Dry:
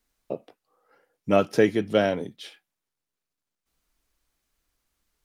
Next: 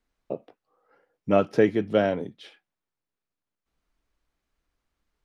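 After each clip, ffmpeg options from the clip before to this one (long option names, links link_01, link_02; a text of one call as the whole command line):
ffmpeg -i in.wav -af "aemphasis=mode=reproduction:type=75kf" out.wav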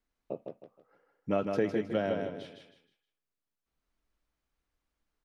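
ffmpeg -i in.wav -filter_complex "[0:a]acompressor=threshold=-21dB:ratio=2,asplit=2[link_01][link_02];[link_02]aecho=0:1:157|314|471|628:0.562|0.174|0.054|0.0168[link_03];[link_01][link_03]amix=inputs=2:normalize=0,volume=-6dB" out.wav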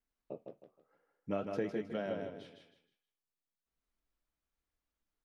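ffmpeg -i in.wav -af "flanger=delay=4.4:depth=8.8:regen=-68:speed=0.53:shape=sinusoidal,volume=-2.5dB" out.wav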